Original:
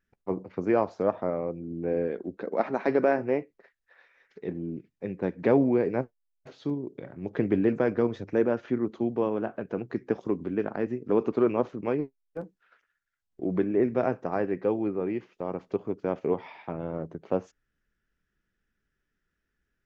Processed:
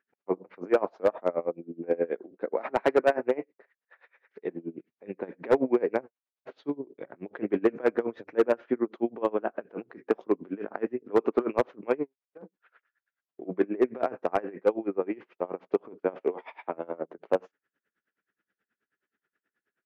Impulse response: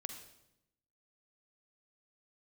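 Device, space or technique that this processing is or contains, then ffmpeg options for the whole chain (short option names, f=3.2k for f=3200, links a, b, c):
helicopter radio: -filter_complex "[0:a]highpass=340,lowpass=2.6k,aeval=exprs='val(0)*pow(10,-25*(0.5-0.5*cos(2*PI*9.4*n/s))/20)':c=same,asoftclip=type=hard:threshold=-21dB,asettb=1/sr,asplit=3[a][b][c];[a]atrim=end=16.244[d];[b]atrim=start=16.24:end=17.18,asetpts=PTS-STARTPTS,afade=t=in:d=0.004:c=qsin,afade=t=out:st=0.936:d=0.004:c=qsin,highpass=220[e];[c]atrim=start=17.176[f];[d][e]acrossfade=d=0.004:c1=hsin:c2=qsin[g];[g][f]acrossfade=d=0.004:c1=qsin:c2=hsin,volume=7.5dB"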